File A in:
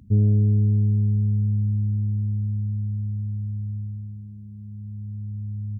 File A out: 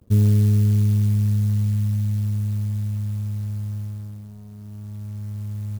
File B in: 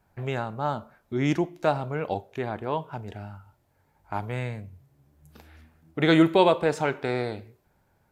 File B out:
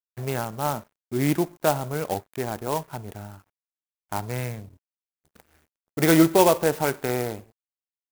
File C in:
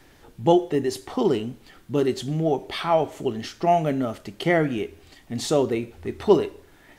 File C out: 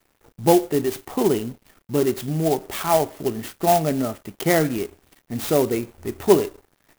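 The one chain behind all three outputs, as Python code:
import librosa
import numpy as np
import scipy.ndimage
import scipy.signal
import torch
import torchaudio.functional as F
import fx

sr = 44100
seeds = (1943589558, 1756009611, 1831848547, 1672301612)

y = np.sign(x) * np.maximum(np.abs(x) - 10.0 ** (-49.5 / 20.0), 0.0)
y = fx.clock_jitter(y, sr, seeds[0], jitter_ms=0.059)
y = y * 10.0 ** (2.0 / 20.0)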